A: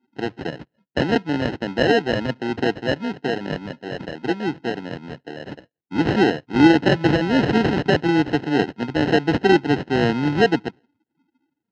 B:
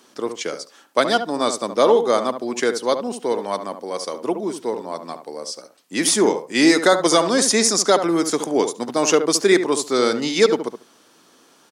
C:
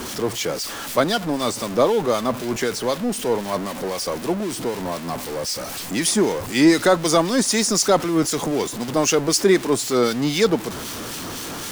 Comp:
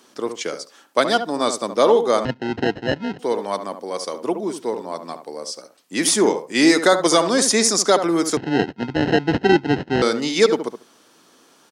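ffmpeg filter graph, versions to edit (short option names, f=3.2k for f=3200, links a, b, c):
-filter_complex "[0:a]asplit=2[a][b];[1:a]asplit=3[c][d][e];[c]atrim=end=2.252[f];[a]atrim=start=2.248:end=3.192[g];[d]atrim=start=3.188:end=8.372[h];[b]atrim=start=8.368:end=10.022[i];[e]atrim=start=10.018[j];[f][g]acrossfade=d=0.004:c1=hsin:c2=hsin[k];[k][h]acrossfade=d=0.004:c1=hsin:c2=hsin[l];[l][i]acrossfade=d=0.004:c1=hsin:c2=hsin[m];[m][j]acrossfade=d=0.004:c1=hsin:c2=hsin"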